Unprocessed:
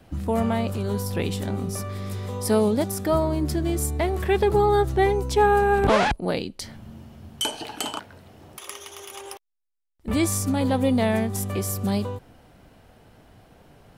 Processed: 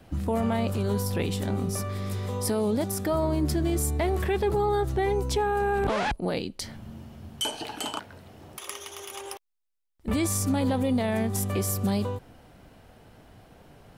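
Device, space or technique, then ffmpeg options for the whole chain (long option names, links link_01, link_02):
stacked limiters: -af "alimiter=limit=-13dB:level=0:latency=1:release=321,alimiter=limit=-17.5dB:level=0:latency=1:release=14"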